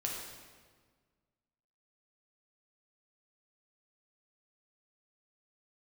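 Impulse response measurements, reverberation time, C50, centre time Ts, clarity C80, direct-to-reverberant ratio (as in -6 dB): 1.6 s, 1.5 dB, 71 ms, 3.5 dB, -2.0 dB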